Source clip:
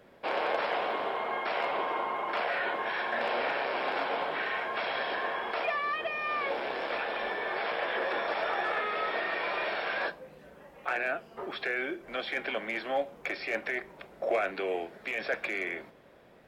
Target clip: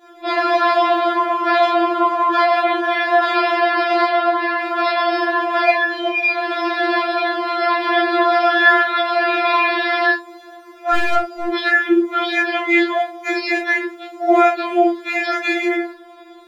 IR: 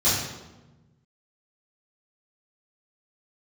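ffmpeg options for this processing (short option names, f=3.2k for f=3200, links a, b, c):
-filter_complex "[0:a]asettb=1/sr,asplit=3[a][b][c];[a]atrim=end=4.074[d];[b]atrim=start=4.07:end=4.58,asetpts=PTS-STARTPTS,afade=t=in:d=0.004:c=qsin,afade=t=out:st=0.506:d=0.004:c=qsin,lowpass=f=3.7k:p=1[e];[c]atrim=start=4.576[f];[d][e]acrossfade=d=0.004:c1=hsin:c2=qsin[g];[g][f]acrossfade=d=0.004:c1=qsin:c2=hsin[h];[1:a]atrim=start_sample=2205,atrim=end_sample=3528[i];[h][i]afir=irnorm=-1:irlink=0,asettb=1/sr,asplit=3[j][k][l];[j]atrim=end=10.944[m];[k]atrim=start=10.94:end=11.49,asetpts=PTS-STARTPTS,afade=t=in:d=0.004:c=qsin,afade=t=out:st=0.546:d=0.004:c=qsin,aeval=exprs='clip(val(0),-1,0.0447)':c=same[n];[l]atrim=start=11.486[o];[m][n]acrossfade=d=0.004:c1=hsin:c2=qsin[p];[p][o]acrossfade=d=0.004:c1=qsin:c2=hsin,afftfilt=real='re*4*eq(mod(b,16),0)':imag='im*4*eq(mod(b,16),0)':win_size=2048:overlap=0.75,volume=2dB"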